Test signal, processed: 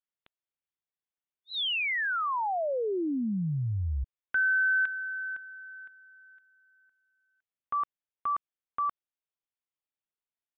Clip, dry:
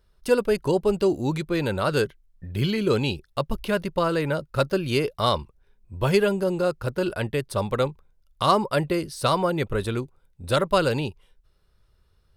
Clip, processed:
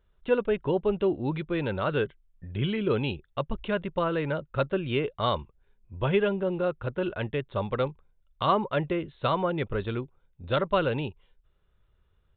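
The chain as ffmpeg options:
ffmpeg -i in.wav -af "aresample=8000,aresample=44100,volume=-4dB" out.wav

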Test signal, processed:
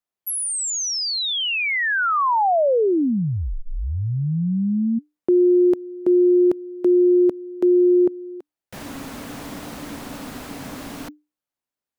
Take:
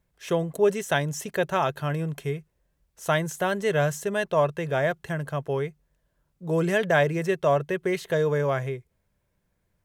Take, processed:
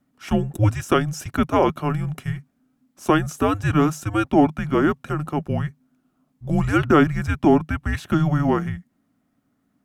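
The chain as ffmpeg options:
ffmpeg -i in.wav -af "afreqshift=-300,equalizer=frequency=560:width=0.35:gain=8" out.wav

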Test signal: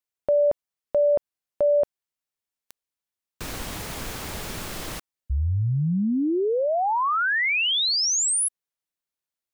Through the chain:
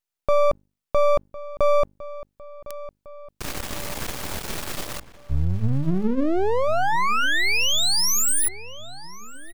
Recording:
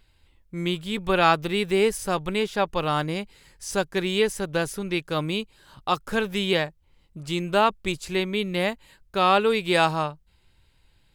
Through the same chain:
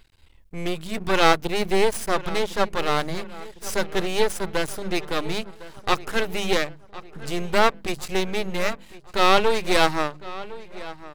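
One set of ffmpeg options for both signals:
ffmpeg -i in.wav -filter_complex "[0:a]bandreject=frequency=50:width_type=h:width=6,bandreject=frequency=100:width_type=h:width=6,bandreject=frequency=150:width_type=h:width=6,bandreject=frequency=200:width_type=h:width=6,bandreject=frequency=250:width_type=h:width=6,aeval=exprs='max(val(0),0)':channel_layout=same,asplit=2[link_01][link_02];[link_02]adelay=1056,lowpass=frequency=3300:poles=1,volume=-17dB,asplit=2[link_03][link_04];[link_04]adelay=1056,lowpass=frequency=3300:poles=1,volume=0.53,asplit=2[link_05][link_06];[link_06]adelay=1056,lowpass=frequency=3300:poles=1,volume=0.53,asplit=2[link_07][link_08];[link_08]adelay=1056,lowpass=frequency=3300:poles=1,volume=0.53,asplit=2[link_09][link_10];[link_10]adelay=1056,lowpass=frequency=3300:poles=1,volume=0.53[link_11];[link_01][link_03][link_05][link_07][link_09][link_11]amix=inputs=6:normalize=0,volume=6dB" out.wav

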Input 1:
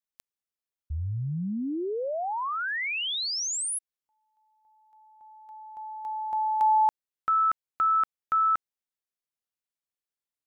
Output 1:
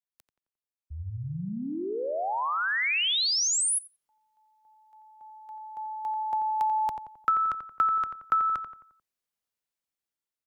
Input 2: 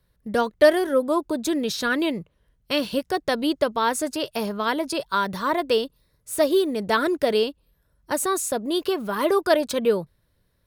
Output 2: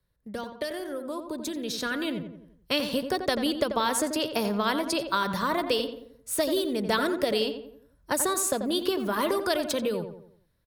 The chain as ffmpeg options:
ffmpeg -i in.wav -filter_complex "[0:a]acrossover=split=150|2600[link_01][link_02][link_03];[link_02]acompressor=threshold=-35dB:ratio=3:attack=87:release=39:knee=2.83:detection=peak[link_04];[link_01][link_04][link_03]amix=inputs=3:normalize=0,asplit=2[link_05][link_06];[link_06]adelay=88,lowpass=frequency=1900:poles=1,volume=-7.5dB,asplit=2[link_07][link_08];[link_08]adelay=88,lowpass=frequency=1900:poles=1,volume=0.47,asplit=2[link_09][link_10];[link_10]adelay=88,lowpass=frequency=1900:poles=1,volume=0.47,asplit=2[link_11][link_12];[link_12]adelay=88,lowpass=frequency=1900:poles=1,volume=0.47,asplit=2[link_13][link_14];[link_14]adelay=88,lowpass=frequency=1900:poles=1,volume=0.47[link_15];[link_05][link_07][link_09][link_11][link_13][link_15]amix=inputs=6:normalize=0,dynaudnorm=framelen=810:gausssize=5:maxgain=13dB,volume=-8.5dB" out.wav

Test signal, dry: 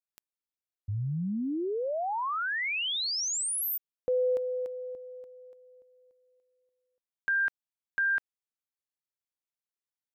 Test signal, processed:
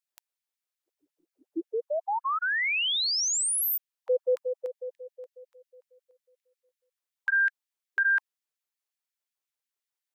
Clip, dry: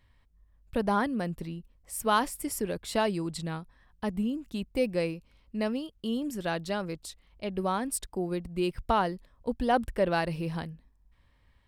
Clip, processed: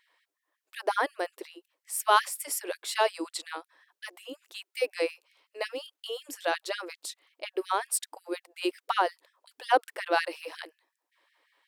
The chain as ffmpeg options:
ffmpeg -i in.wav -af "afftfilt=real='re*gte(b*sr/1024,270*pow(1700/270,0.5+0.5*sin(2*PI*5.5*pts/sr)))':imag='im*gte(b*sr/1024,270*pow(1700/270,0.5+0.5*sin(2*PI*5.5*pts/sr)))':win_size=1024:overlap=0.75,volume=4dB" out.wav

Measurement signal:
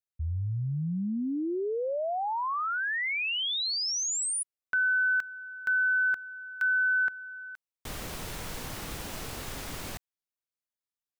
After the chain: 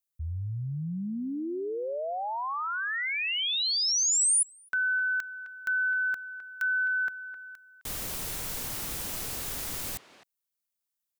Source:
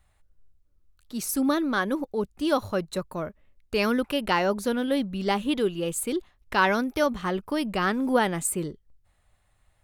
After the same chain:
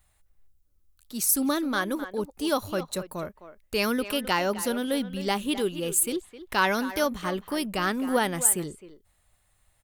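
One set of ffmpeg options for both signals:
ffmpeg -i in.wav -filter_complex "[0:a]crystalizer=i=2:c=0,asplit=2[link_01][link_02];[link_02]adelay=260,highpass=300,lowpass=3400,asoftclip=type=hard:threshold=-15dB,volume=-12dB[link_03];[link_01][link_03]amix=inputs=2:normalize=0,volume=-2.5dB" out.wav

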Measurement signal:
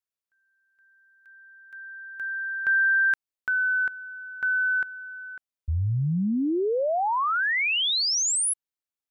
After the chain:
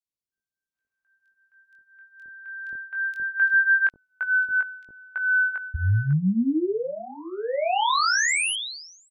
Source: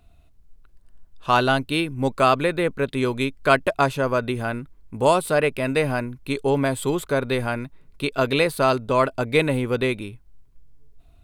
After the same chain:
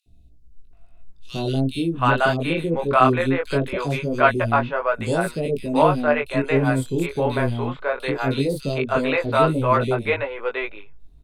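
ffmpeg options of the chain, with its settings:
ffmpeg -i in.wav -filter_complex "[0:a]aemphasis=mode=reproduction:type=cd,acrossover=split=480|3400[link_01][link_02][link_03];[link_01]adelay=60[link_04];[link_02]adelay=730[link_05];[link_04][link_05][link_03]amix=inputs=3:normalize=0,flanger=delay=17.5:depth=6.8:speed=0.2,volume=5.5dB" out.wav

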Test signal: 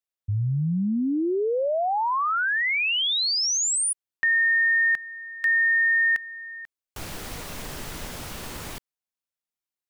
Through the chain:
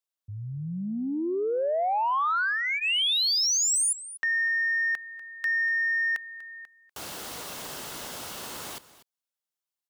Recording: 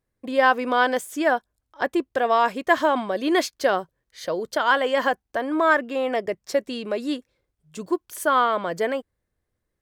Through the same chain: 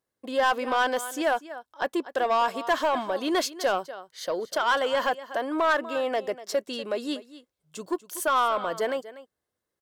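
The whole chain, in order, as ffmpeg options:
ffmpeg -i in.wav -filter_complex "[0:a]highpass=frequency=470:poles=1,equalizer=frequency=1900:width_type=o:width=0.43:gain=-5,bandreject=frequency=2400:width=13,asplit=2[link_01][link_02];[link_02]aecho=0:1:243:0.141[link_03];[link_01][link_03]amix=inputs=2:normalize=0,asoftclip=type=tanh:threshold=-15.5dB,aeval=exprs='0.168*(cos(1*acos(clip(val(0)/0.168,-1,1)))-cos(1*PI/2))+0.00335*(cos(5*acos(clip(val(0)/0.168,-1,1)))-cos(5*PI/2))':channel_layout=same" out.wav

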